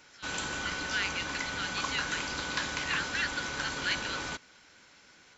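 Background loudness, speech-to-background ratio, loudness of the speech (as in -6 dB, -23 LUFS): -34.5 LUFS, -1.5 dB, -36.0 LUFS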